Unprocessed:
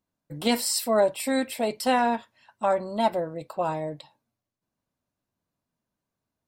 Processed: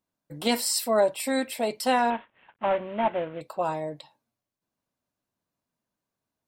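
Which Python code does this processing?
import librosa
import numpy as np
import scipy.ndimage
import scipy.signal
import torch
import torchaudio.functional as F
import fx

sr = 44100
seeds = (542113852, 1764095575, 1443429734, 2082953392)

y = fx.cvsd(x, sr, bps=16000, at=(2.1, 3.41))
y = fx.low_shelf(y, sr, hz=170.0, db=-6.5)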